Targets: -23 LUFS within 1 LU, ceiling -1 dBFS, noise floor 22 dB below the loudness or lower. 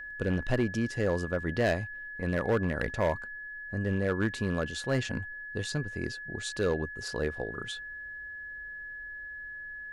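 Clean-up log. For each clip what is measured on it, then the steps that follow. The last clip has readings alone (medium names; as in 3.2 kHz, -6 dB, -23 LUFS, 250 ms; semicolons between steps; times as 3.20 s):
clipped samples 0.7%; clipping level -20.5 dBFS; steady tone 1.7 kHz; tone level -39 dBFS; loudness -32.5 LUFS; peak level -20.5 dBFS; loudness target -23.0 LUFS
-> clip repair -20.5 dBFS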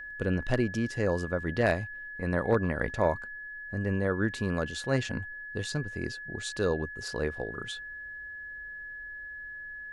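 clipped samples 0.0%; steady tone 1.7 kHz; tone level -39 dBFS
-> band-stop 1.7 kHz, Q 30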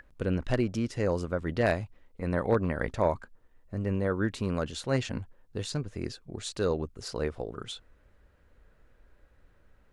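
steady tone not found; loudness -31.5 LUFS; peak level -11.5 dBFS; loudness target -23.0 LUFS
-> trim +8.5 dB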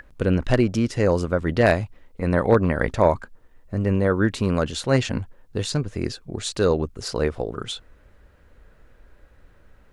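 loudness -23.0 LUFS; peak level -3.0 dBFS; noise floor -54 dBFS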